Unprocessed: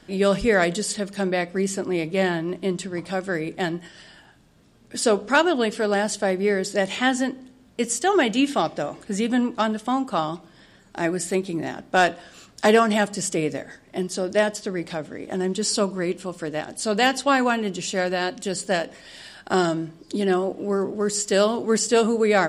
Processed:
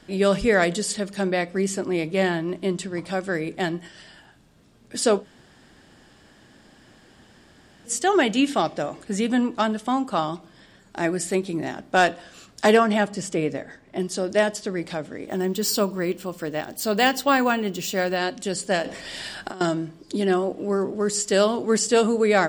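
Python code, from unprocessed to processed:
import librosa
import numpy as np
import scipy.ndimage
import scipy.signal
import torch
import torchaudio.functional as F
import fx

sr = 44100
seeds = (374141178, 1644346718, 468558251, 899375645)

y = fx.high_shelf(x, sr, hz=4800.0, db=-10.0, at=(12.77, 14.0))
y = fx.resample_bad(y, sr, factor=2, down='filtered', up='hold', at=(15.28, 18.17))
y = fx.over_compress(y, sr, threshold_db=-32.0, ratio=-1.0, at=(18.85, 19.61))
y = fx.edit(y, sr, fx.room_tone_fill(start_s=5.22, length_s=2.67, crossfade_s=0.1), tone=tone)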